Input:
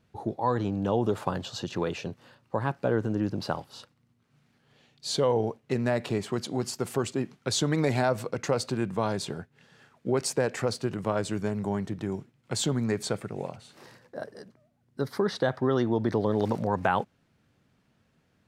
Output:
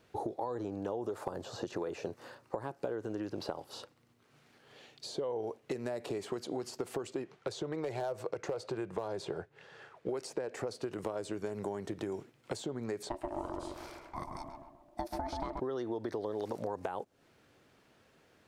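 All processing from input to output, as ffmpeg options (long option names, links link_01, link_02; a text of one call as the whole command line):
ffmpeg -i in.wav -filter_complex "[0:a]asettb=1/sr,asplit=3[link_01][link_02][link_03];[link_01]atrim=end=0.554[link_04];[link_02]atrim=start=0.55:end=2.64,asetpts=PTS-STARTPTS,afade=type=in:duration=0.004:curve=qsin,afade=type=out:start_time=2.086:duration=0.004:curve=qsin,acrossover=split=2700[link_05][link_06];[link_06]acompressor=threshold=-47dB:ratio=4:attack=1:release=60[link_07];[link_05][link_07]amix=inputs=2:normalize=0,equalizer=frequency=3100:width=1.7:gain=-6.5[link_08];[link_03]atrim=start=2.636[link_09];[link_04][link_08]acrossfade=duration=0.004:curve1=hsin:curve2=qsin[link_10];[link_10][link_09]acrossfade=duration=0.004:curve1=qsin:curve2=hsin,asettb=1/sr,asplit=3[link_11][link_12][link_13];[link_11]atrim=end=7.244[link_14];[link_12]atrim=start=7.24:end=10.09,asetpts=PTS-STARTPTS,afade=type=in:duration=0.004:curve=qsin,afade=type=out:start_time=2.846:duration=0.004:curve=qsin,lowpass=frequency=2500:poles=1,equalizer=frequency=250:width_type=o:width=0.38:gain=-12.5,volume=19dB,asoftclip=hard,volume=-19dB[link_15];[link_13]atrim=start=10.086[link_16];[link_14][link_15]acrossfade=duration=0.004:curve1=hsin:curve2=qsin[link_17];[link_17][link_16]acrossfade=duration=0.004:curve1=qsin:curve2=hsin,asettb=1/sr,asplit=3[link_18][link_19][link_20];[link_18]atrim=end=13.094[link_21];[link_19]atrim=start=13.09:end=15.6,asetpts=PTS-STARTPTS,afade=type=in:duration=0.004:curve=qsin,afade=type=out:start_time=2.506:duration=0.004:curve=qsin,aeval=exprs='val(0)*sin(2*PI*470*n/s)':channel_layout=same,asplit=2[link_22][link_23];[link_23]adelay=132,lowpass=frequency=1100:poles=1,volume=-4dB,asplit=2[link_24][link_25];[link_25]adelay=132,lowpass=frequency=1100:poles=1,volume=0.49,asplit=2[link_26][link_27];[link_27]adelay=132,lowpass=frequency=1100:poles=1,volume=0.49,asplit=2[link_28][link_29];[link_29]adelay=132,lowpass=frequency=1100:poles=1,volume=0.49,asplit=2[link_30][link_31];[link_31]adelay=132,lowpass=frequency=1100:poles=1,volume=0.49,asplit=2[link_32][link_33];[link_33]adelay=132,lowpass=frequency=1100:poles=1,volume=0.49[link_34];[link_22][link_24][link_26][link_28][link_30][link_32][link_34]amix=inputs=7:normalize=0,atrim=end_sample=110691[link_35];[link_20]atrim=start=15.596[link_36];[link_21][link_35]acrossfade=duration=0.004:curve1=hsin:curve2=qsin[link_37];[link_37][link_36]acrossfade=duration=0.004:curve1=qsin:curve2=hsin,acompressor=threshold=-34dB:ratio=6,lowshelf=frequency=270:width_type=q:width=1.5:gain=-8,acrossover=split=870|5200[link_38][link_39][link_40];[link_38]acompressor=threshold=-40dB:ratio=4[link_41];[link_39]acompressor=threshold=-56dB:ratio=4[link_42];[link_40]acompressor=threshold=-60dB:ratio=4[link_43];[link_41][link_42][link_43]amix=inputs=3:normalize=0,volume=6dB" out.wav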